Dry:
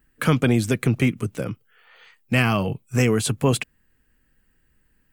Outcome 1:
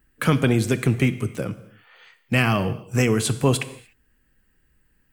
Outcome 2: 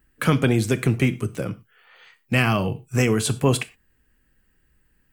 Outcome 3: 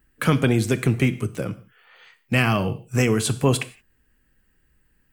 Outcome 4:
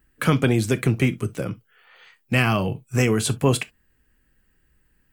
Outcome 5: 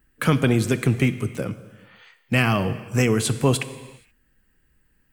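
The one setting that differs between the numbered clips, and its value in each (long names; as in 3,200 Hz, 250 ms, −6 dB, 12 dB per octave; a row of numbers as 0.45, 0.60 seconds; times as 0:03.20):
reverb whose tail is shaped and stops, gate: 320, 140, 200, 90, 500 milliseconds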